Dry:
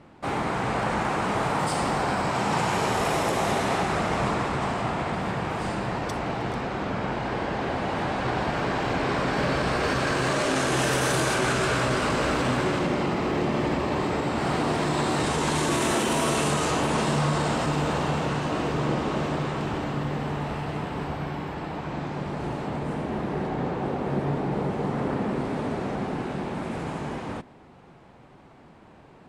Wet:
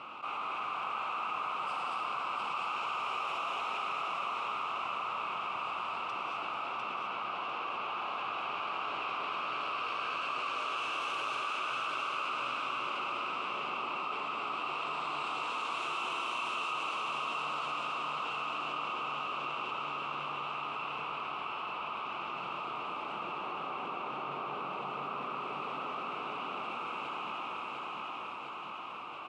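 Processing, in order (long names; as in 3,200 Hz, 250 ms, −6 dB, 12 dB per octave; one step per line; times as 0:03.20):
pair of resonant band-passes 1,800 Hz, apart 1.1 octaves
on a send: repeating echo 700 ms, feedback 36%, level −4.5 dB
on the sum: reverb whose tail is shaped and stops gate 270 ms rising, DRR −0.5 dB
envelope flattener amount 70%
level −7 dB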